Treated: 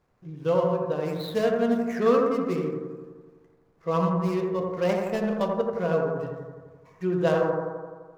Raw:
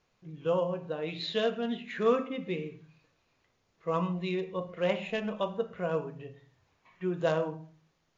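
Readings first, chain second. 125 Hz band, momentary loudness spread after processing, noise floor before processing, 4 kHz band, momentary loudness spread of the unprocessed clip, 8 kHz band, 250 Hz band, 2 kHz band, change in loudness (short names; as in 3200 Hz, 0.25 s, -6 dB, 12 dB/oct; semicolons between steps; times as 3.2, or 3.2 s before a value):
+7.5 dB, 13 LU, -75 dBFS, -2.5 dB, 10 LU, n/a, +8.0 dB, +3.0 dB, +6.0 dB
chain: median filter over 15 samples; bell 82 Hz +3 dB 2.1 oct; analogue delay 85 ms, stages 1024, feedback 68%, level -3 dB; gain +4 dB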